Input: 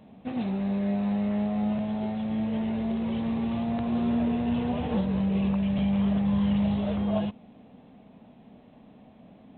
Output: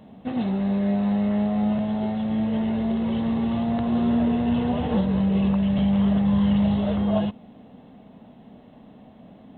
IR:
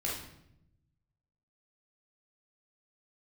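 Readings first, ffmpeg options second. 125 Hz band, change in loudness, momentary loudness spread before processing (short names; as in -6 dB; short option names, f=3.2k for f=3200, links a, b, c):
+4.5 dB, +4.5 dB, 5 LU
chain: -af "bandreject=f=2.4k:w=8.8,volume=4.5dB"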